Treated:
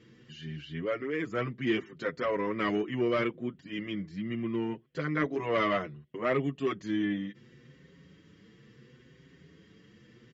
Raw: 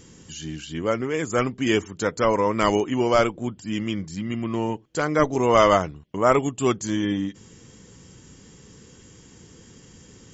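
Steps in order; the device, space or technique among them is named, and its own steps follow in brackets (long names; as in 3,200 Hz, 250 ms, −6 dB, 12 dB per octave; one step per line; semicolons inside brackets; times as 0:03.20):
barber-pole flanger into a guitar amplifier (barber-pole flanger 6.4 ms +0.7 Hz; soft clipping −15.5 dBFS, distortion −16 dB; loudspeaker in its box 86–4,100 Hz, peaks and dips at 100 Hz −7 dB, 140 Hz +6 dB, 350 Hz +3 dB, 850 Hz −10 dB, 1,900 Hz +7 dB)
level −5 dB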